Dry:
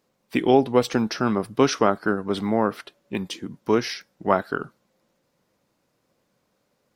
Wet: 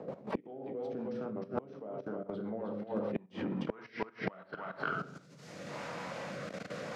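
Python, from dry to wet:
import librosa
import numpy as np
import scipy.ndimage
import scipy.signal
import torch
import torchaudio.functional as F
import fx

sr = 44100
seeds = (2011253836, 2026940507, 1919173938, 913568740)

p1 = fx.high_shelf(x, sr, hz=6600.0, db=9.0)
p2 = 10.0 ** (-18.5 / 20.0) * np.tanh(p1 / 10.0 ** (-18.5 / 20.0))
p3 = p1 + F.gain(torch.from_numpy(p2), -4.0).numpy()
p4 = fx.peak_eq(p3, sr, hz=340.0, db=-11.5, octaves=0.97)
p5 = fx.room_shoebox(p4, sr, seeds[0], volume_m3=120.0, walls='mixed', distance_m=0.59)
p6 = fx.filter_sweep_lowpass(p5, sr, from_hz=540.0, to_hz=6500.0, start_s=2.82, end_s=5.12, q=1.3)
p7 = p6 + fx.echo_single(p6, sr, ms=308, db=-7.0, dry=0)
p8 = fx.rotary_switch(p7, sr, hz=5.5, then_hz=0.85, switch_at_s=3.51)
p9 = fx.level_steps(p8, sr, step_db=14)
p10 = scipy.signal.sosfilt(scipy.signal.butter(2, 210.0, 'highpass', fs=sr, output='sos'), p9)
p11 = fx.gate_flip(p10, sr, shuts_db=-27.0, range_db=-29)
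p12 = fx.band_squash(p11, sr, depth_pct=100)
y = F.gain(torch.from_numpy(p12), 10.0).numpy()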